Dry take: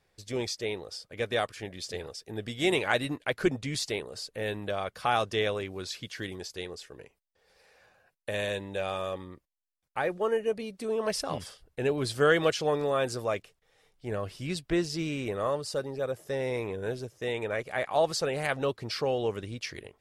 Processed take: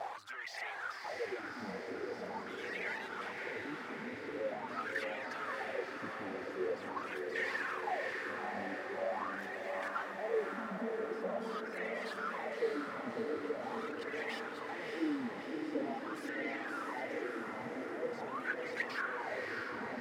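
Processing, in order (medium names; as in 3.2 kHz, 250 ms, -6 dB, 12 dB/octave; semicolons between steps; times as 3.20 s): one-bit comparator; bass shelf 420 Hz -7 dB; echo whose repeats swap between lows and highs 265 ms, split 1.7 kHz, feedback 86%, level -7.5 dB; reverb removal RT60 1.6 s; wah-wah 0.44 Hz 230–2000 Hz, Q 8; echo that smears into a reverb 640 ms, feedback 65%, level -3 dB; trim +7.5 dB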